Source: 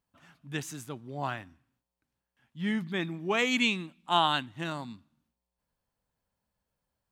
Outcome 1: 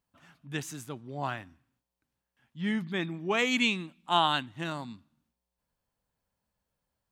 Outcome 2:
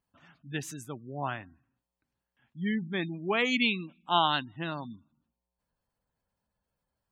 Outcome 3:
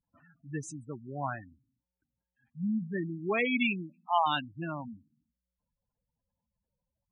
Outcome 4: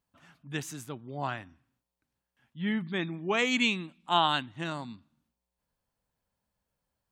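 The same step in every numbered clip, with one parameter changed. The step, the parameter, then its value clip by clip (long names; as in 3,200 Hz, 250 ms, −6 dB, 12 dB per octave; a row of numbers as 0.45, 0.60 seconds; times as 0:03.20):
gate on every frequency bin, under each frame's peak: −60, −25, −10, −45 decibels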